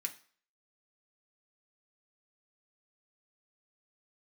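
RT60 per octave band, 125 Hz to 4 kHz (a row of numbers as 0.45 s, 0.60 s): 0.35 s, 0.40 s, 0.45 s, 0.50 s, 0.45 s, 0.45 s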